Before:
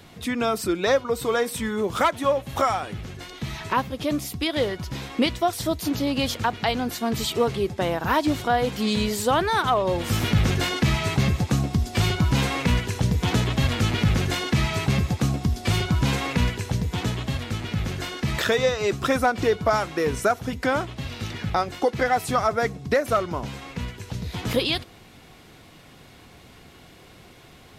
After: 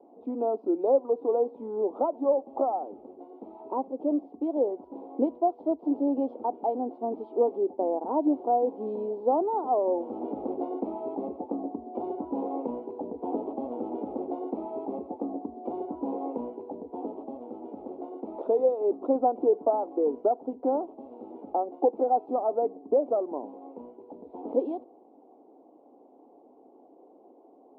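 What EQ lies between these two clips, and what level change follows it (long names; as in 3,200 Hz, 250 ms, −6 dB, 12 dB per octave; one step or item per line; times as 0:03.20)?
elliptic band-pass filter 270–850 Hz, stop band 40 dB
high-frequency loss of the air 320 metres
0.0 dB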